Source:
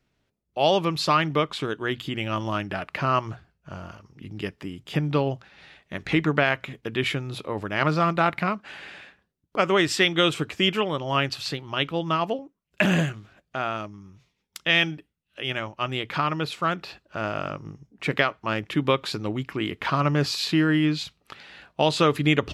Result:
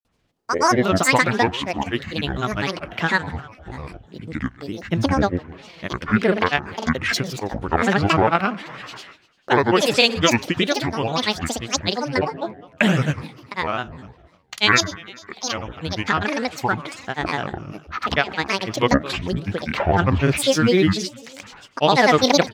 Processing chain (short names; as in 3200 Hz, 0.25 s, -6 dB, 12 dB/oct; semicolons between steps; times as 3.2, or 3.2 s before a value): feedback echo 0.129 s, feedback 58%, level -18.5 dB; grains, pitch spread up and down by 12 st; wow and flutter 17 cents; gain +5.5 dB